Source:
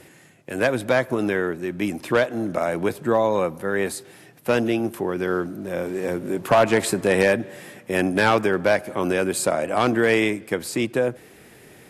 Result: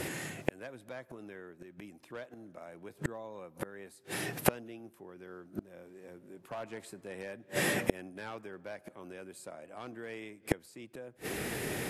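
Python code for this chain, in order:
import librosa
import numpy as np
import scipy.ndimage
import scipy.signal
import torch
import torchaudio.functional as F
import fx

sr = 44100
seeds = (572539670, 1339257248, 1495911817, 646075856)

y = fx.gate_flip(x, sr, shuts_db=-24.0, range_db=-36)
y = F.gain(torch.from_numpy(y), 11.0).numpy()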